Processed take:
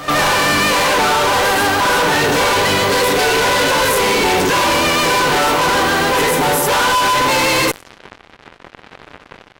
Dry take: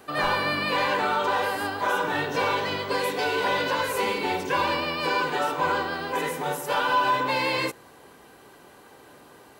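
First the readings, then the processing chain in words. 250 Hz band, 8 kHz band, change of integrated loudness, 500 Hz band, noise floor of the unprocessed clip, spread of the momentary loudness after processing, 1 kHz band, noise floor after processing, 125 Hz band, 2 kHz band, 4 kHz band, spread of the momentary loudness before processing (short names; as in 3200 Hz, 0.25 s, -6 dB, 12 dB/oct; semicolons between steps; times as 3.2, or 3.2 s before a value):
+12.5 dB, +21.0 dB, +12.0 dB, +11.0 dB, -51 dBFS, 1 LU, +10.0 dB, -46 dBFS, +13.5 dB, +11.5 dB, +14.0 dB, 4 LU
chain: fuzz box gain 41 dB, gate -45 dBFS; low-pass opened by the level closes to 2500 Hz, open at -16.5 dBFS; reverse echo 0.124 s -15 dB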